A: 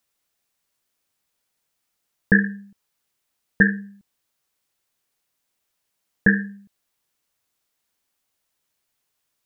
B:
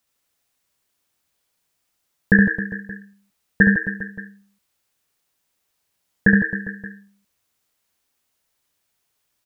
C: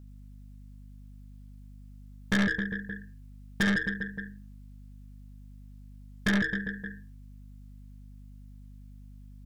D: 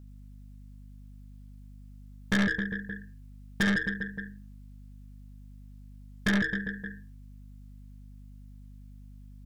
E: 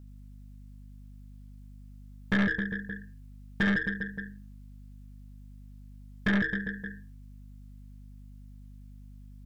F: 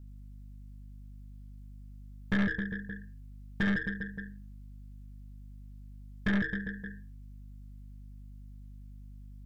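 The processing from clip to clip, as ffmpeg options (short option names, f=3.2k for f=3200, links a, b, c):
-filter_complex "[0:a]equalizer=f=85:t=o:w=1.1:g=3,asplit=2[a][b];[b]aecho=0:1:70|157.5|266.9|403.6|574.5:0.631|0.398|0.251|0.158|0.1[c];[a][c]amix=inputs=2:normalize=0,volume=1dB"
-af "aeval=exprs='val(0)+0.00708*(sin(2*PI*50*n/s)+sin(2*PI*2*50*n/s)/2+sin(2*PI*3*50*n/s)/3+sin(2*PI*4*50*n/s)/4+sin(2*PI*5*50*n/s)/5)':c=same,aeval=exprs='(tanh(8.91*val(0)+0.3)-tanh(0.3))/8.91':c=same,volume=-3dB"
-af anull
-filter_complex "[0:a]acrossover=split=3600[a][b];[b]acompressor=threshold=-55dB:ratio=4:attack=1:release=60[c];[a][c]amix=inputs=2:normalize=0"
-af "lowshelf=f=160:g=6,volume=-4.5dB"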